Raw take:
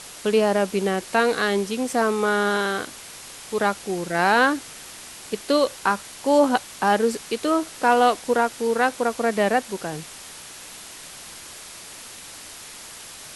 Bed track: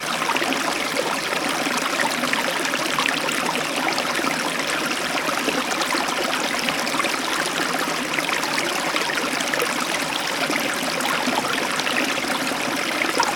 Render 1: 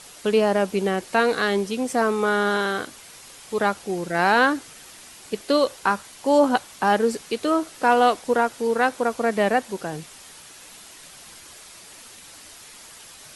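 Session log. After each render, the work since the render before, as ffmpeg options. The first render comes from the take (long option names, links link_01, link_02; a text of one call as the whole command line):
ffmpeg -i in.wav -af "afftdn=noise_reduction=6:noise_floor=-41" out.wav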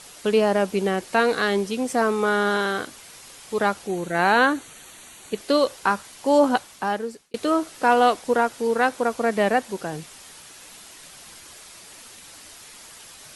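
ffmpeg -i in.wav -filter_complex "[0:a]asettb=1/sr,asplit=3[link_01][link_02][link_03];[link_01]atrim=end=3.874[link_04];[link_02]atrim=start=3.87:end=5.38,asetpts=PTS-STARTPTS,afade=type=in:duration=0.004:curve=qsin,afade=type=out:start_time=1.506:duration=0.004:curve=qsin,asuperstop=centerf=5100:order=4:qfactor=4.7[link_05];[link_03]atrim=start=5.376[link_06];[link_04][link_05]acrossfade=duration=0.004:curve1=hsin:curve2=qsin[link_07];[link_07][link_06]acrossfade=duration=0.004:curve1=qsin:curve2=hsin,asplit=2[link_08][link_09];[link_08]atrim=end=7.34,asetpts=PTS-STARTPTS,afade=type=out:start_time=6.5:duration=0.84[link_10];[link_09]atrim=start=7.34,asetpts=PTS-STARTPTS,afade=type=in:duration=0.004:curve=hsin[link_11];[link_10][link_11]concat=n=2:v=0:a=1" out.wav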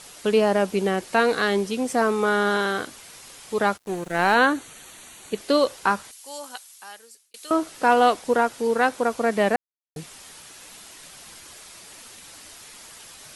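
ffmpeg -i in.wav -filter_complex "[0:a]asplit=3[link_01][link_02][link_03];[link_01]afade=type=out:start_time=3.76:duration=0.02[link_04];[link_02]aeval=exprs='sgn(val(0))*max(abs(val(0))-0.0141,0)':channel_layout=same,afade=type=in:start_time=3.76:duration=0.02,afade=type=out:start_time=4.34:duration=0.02[link_05];[link_03]afade=type=in:start_time=4.34:duration=0.02[link_06];[link_04][link_05][link_06]amix=inputs=3:normalize=0,asettb=1/sr,asplit=3[link_07][link_08][link_09];[link_07]atrim=end=6.114[link_10];[link_08]atrim=start=6.11:end=7.51,asetpts=PTS-STARTPTS,afade=type=in:duration=0.004:curve=qsin,afade=type=out:start_time=1.396:duration=0.004:curve=qsin,aderivative[link_11];[link_09]atrim=start=7.506[link_12];[link_10][link_11]acrossfade=duration=0.004:curve1=hsin:curve2=qsin[link_13];[link_13][link_12]acrossfade=duration=0.004:curve1=qsin:curve2=hsin,asplit=3[link_14][link_15][link_16];[link_14]atrim=end=9.56,asetpts=PTS-STARTPTS,afade=type=out:start_time=9.556:duration=0.004:curve=hsin[link_17];[link_15]atrim=start=9.56:end=9.96,asetpts=PTS-STARTPTS,volume=0[link_18];[link_16]atrim=start=9.96,asetpts=PTS-STARTPTS,afade=type=in:duration=0.004:curve=hsin[link_19];[link_17][link_18][link_19]concat=n=3:v=0:a=1" out.wav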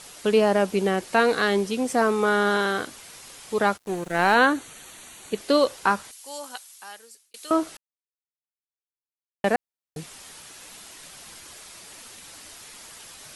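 ffmpeg -i in.wav -filter_complex "[0:a]asplit=3[link_01][link_02][link_03];[link_01]atrim=end=7.77,asetpts=PTS-STARTPTS,afade=type=out:start_time=7.766:duration=0.004:curve=hsin[link_04];[link_02]atrim=start=7.77:end=9.44,asetpts=PTS-STARTPTS,volume=0[link_05];[link_03]atrim=start=9.44,asetpts=PTS-STARTPTS,afade=type=in:duration=0.004:curve=hsin[link_06];[link_04][link_05][link_06]concat=n=3:v=0:a=1" out.wav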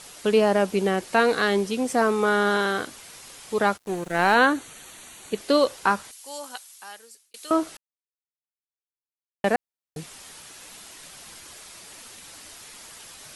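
ffmpeg -i in.wav -af anull out.wav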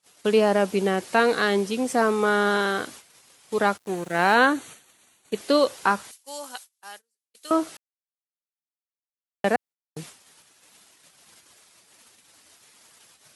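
ffmpeg -i in.wav -af "agate=range=-32dB:threshold=-42dB:ratio=16:detection=peak,highpass=90" out.wav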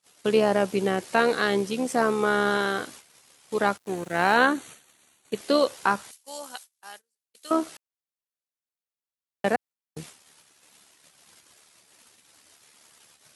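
ffmpeg -i in.wav -af "tremolo=f=73:d=0.4,asoftclip=type=hard:threshold=-6.5dB" out.wav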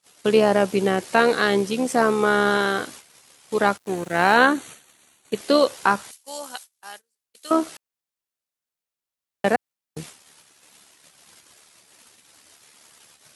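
ffmpeg -i in.wav -af "volume=4dB" out.wav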